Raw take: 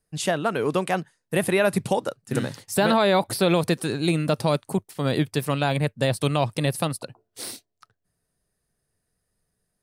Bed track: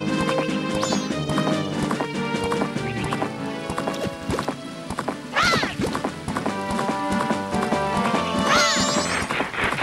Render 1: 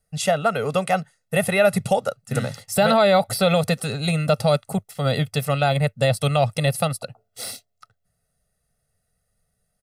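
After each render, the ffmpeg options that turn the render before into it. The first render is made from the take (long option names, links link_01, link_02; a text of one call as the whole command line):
ffmpeg -i in.wav -af "aecho=1:1:1.5:0.94" out.wav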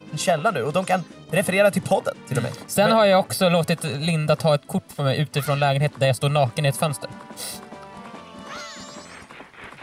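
ffmpeg -i in.wav -i bed.wav -filter_complex "[1:a]volume=-17.5dB[link_01];[0:a][link_01]amix=inputs=2:normalize=0" out.wav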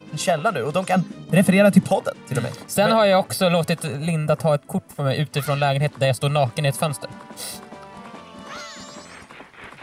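ffmpeg -i in.wav -filter_complex "[0:a]asettb=1/sr,asplit=3[link_01][link_02][link_03];[link_01]atrim=end=0.964[link_04];[link_02]atrim=start=0.96:end=1.84,asetpts=PTS-STARTPTS,afade=type=in:duration=0.004:curve=qsin,afade=type=out:start_time=0.876:duration=0.004:curve=qsin,equalizer=frequency=200:width=1.5:gain=11.5[link_05];[link_03]atrim=start=1.836[link_06];[link_04][link_05]acrossfade=duration=0.004:curve1=hsin:curve2=qsin[link_07];[link_07][link_06]acrossfade=duration=0.004:curve1=qsin:curve2=hsin,asettb=1/sr,asplit=3[link_08][link_09][link_10];[link_08]atrim=end=3.874[link_11];[link_09]atrim=start=3.87:end=5.11,asetpts=PTS-STARTPTS,afade=type=in:duration=0.004:curve=qsin,afade=type=out:start_time=1.236:duration=0.004:curve=qsin,equalizer=frequency=4000:width_type=o:width=0.99:gain=-10.5[link_12];[link_10]atrim=start=5.106[link_13];[link_11][link_12]acrossfade=duration=0.004:curve1=hsin:curve2=qsin[link_14];[link_14][link_13]acrossfade=duration=0.004:curve1=qsin:curve2=hsin" out.wav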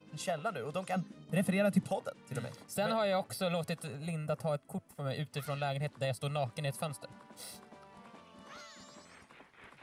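ffmpeg -i in.wav -af "volume=-15.5dB" out.wav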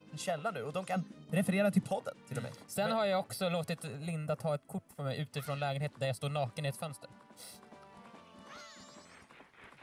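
ffmpeg -i in.wav -filter_complex "[0:a]asplit=3[link_01][link_02][link_03];[link_01]atrim=end=6.752[link_04];[link_02]atrim=start=6.748:end=7.632,asetpts=PTS-STARTPTS,volume=-3dB[link_05];[link_03]atrim=start=7.628[link_06];[link_04][link_05]acrossfade=duration=0.004:curve1=hsin:curve2=hsin[link_07];[link_07][link_06]acrossfade=duration=0.004:curve1=hsin:curve2=hsin" out.wav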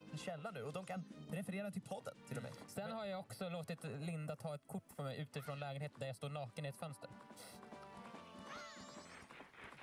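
ffmpeg -i in.wav -filter_complex "[0:a]alimiter=level_in=3dB:limit=-24dB:level=0:latency=1:release=304,volume=-3dB,acrossover=split=160|2500[link_01][link_02][link_03];[link_01]acompressor=threshold=-53dB:ratio=4[link_04];[link_02]acompressor=threshold=-45dB:ratio=4[link_05];[link_03]acompressor=threshold=-59dB:ratio=4[link_06];[link_04][link_05][link_06]amix=inputs=3:normalize=0" out.wav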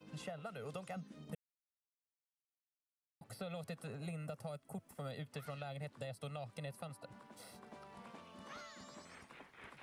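ffmpeg -i in.wav -filter_complex "[0:a]asplit=3[link_01][link_02][link_03];[link_01]atrim=end=1.35,asetpts=PTS-STARTPTS,afade=type=out:start_time=1.346:duration=0.004:curve=hsin[link_04];[link_02]atrim=start=1.35:end=3.21,asetpts=PTS-STARTPTS,volume=0[link_05];[link_03]atrim=start=3.21,asetpts=PTS-STARTPTS,afade=type=in:duration=0.004:curve=hsin[link_06];[link_04][link_05][link_06]concat=n=3:v=0:a=1" out.wav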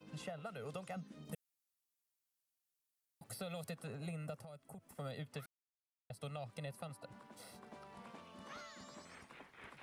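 ffmpeg -i in.wav -filter_complex "[0:a]asettb=1/sr,asplit=3[link_01][link_02][link_03];[link_01]atrim=end=1.254[link_04];[link_02]atrim=start=1.25:end=3.71,asetpts=PTS-STARTPTS,afade=type=in:duration=0.004:curve=qsin,afade=type=out:start_time=2.456:duration=0.004:curve=qsin,aemphasis=mode=production:type=cd[link_05];[link_03]atrim=start=3.706[link_06];[link_04][link_05]acrossfade=duration=0.004:curve1=hsin:curve2=qsin[link_07];[link_07][link_06]acrossfade=duration=0.004:curve1=qsin:curve2=hsin,asettb=1/sr,asplit=3[link_08][link_09][link_10];[link_08]atrim=end=4.374[link_11];[link_09]atrim=start=4.37:end=4.95,asetpts=PTS-STARTPTS,afade=type=in:duration=0.004:curve=qsin,afade=type=out:start_time=0.576:duration=0.004:curve=qsin,acompressor=threshold=-50dB:ratio=4:attack=3.2:release=140:knee=1:detection=peak[link_12];[link_10]atrim=start=4.946[link_13];[link_11][link_12]acrossfade=duration=0.004:curve1=hsin:curve2=qsin[link_14];[link_14][link_13]acrossfade=duration=0.004:curve1=qsin:curve2=hsin,asplit=3[link_15][link_16][link_17];[link_15]atrim=end=5.46,asetpts=PTS-STARTPTS,afade=type=out:start_time=5.456:duration=0.004:curve=hsin[link_18];[link_16]atrim=start=5.46:end=6.1,asetpts=PTS-STARTPTS,volume=0[link_19];[link_17]atrim=start=6.1,asetpts=PTS-STARTPTS,afade=type=in:duration=0.004:curve=hsin[link_20];[link_18][link_19][link_20]concat=n=3:v=0:a=1" out.wav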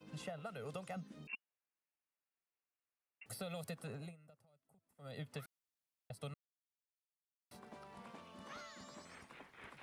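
ffmpeg -i in.wav -filter_complex "[0:a]asettb=1/sr,asplit=3[link_01][link_02][link_03];[link_01]atrim=end=1.274[link_04];[link_02]atrim=start=1.27:end=3.26,asetpts=PTS-STARTPTS,afade=type=in:duration=0.004:curve=qsin,afade=type=out:start_time=1.986:duration=0.004:curve=qsin,lowpass=frequency=2500:width_type=q:width=0.5098,lowpass=frequency=2500:width_type=q:width=0.6013,lowpass=frequency=2500:width_type=q:width=0.9,lowpass=frequency=2500:width_type=q:width=2.563,afreqshift=-2900[link_05];[link_03]atrim=start=3.256[link_06];[link_04][link_05]acrossfade=duration=0.004:curve1=hsin:curve2=qsin[link_07];[link_07][link_06]acrossfade=duration=0.004:curve1=qsin:curve2=hsin,asplit=5[link_08][link_09][link_10][link_11][link_12];[link_08]atrim=end=4.16,asetpts=PTS-STARTPTS,afade=type=out:start_time=3.97:duration=0.19:silence=0.112202[link_13];[link_09]atrim=start=4.16:end=4.99,asetpts=PTS-STARTPTS,volume=-19dB[link_14];[link_10]atrim=start=4.99:end=6.34,asetpts=PTS-STARTPTS,afade=type=in:duration=0.19:silence=0.112202,afade=type=out:start_time=1.346:duration=0.004:curve=hsin[link_15];[link_11]atrim=start=6.34:end=7.51,asetpts=PTS-STARTPTS,volume=0[link_16];[link_12]atrim=start=7.51,asetpts=PTS-STARTPTS,afade=type=in:duration=0.004:curve=hsin[link_17];[link_13][link_14][link_15][link_16][link_17]concat=n=5:v=0:a=1" out.wav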